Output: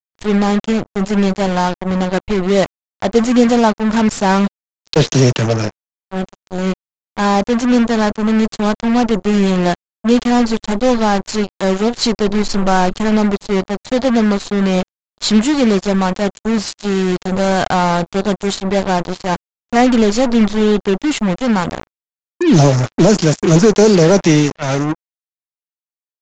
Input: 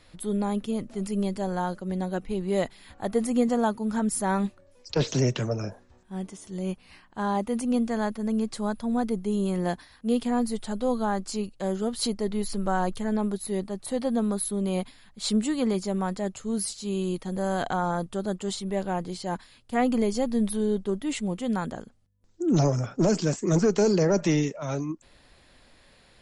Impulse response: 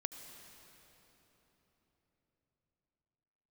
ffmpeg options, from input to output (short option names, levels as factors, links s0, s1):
-af "acontrast=85,acrusher=bits=3:mix=0:aa=0.5,aresample=16000,aresample=44100,volume=1.88"